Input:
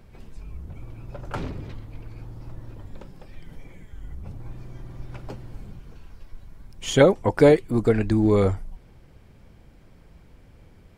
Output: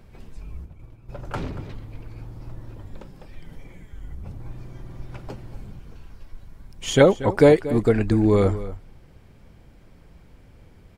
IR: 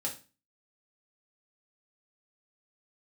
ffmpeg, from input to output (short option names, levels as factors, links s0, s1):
-filter_complex "[0:a]asplit=3[s0][s1][s2];[s0]afade=t=out:st=0.64:d=0.02[s3];[s1]agate=range=0.0224:threshold=0.0355:ratio=3:detection=peak,afade=t=in:st=0.64:d=0.02,afade=t=out:st=1.08:d=0.02[s4];[s2]afade=t=in:st=1.08:d=0.02[s5];[s3][s4][s5]amix=inputs=3:normalize=0,asplit=2[s6][s7];[s7]adelay=233.2,volume=0.178,highshelf=f=4000:g=-5.25[s8];[s6][s8]amix=inputs=2:normalize=0,volume=1.12"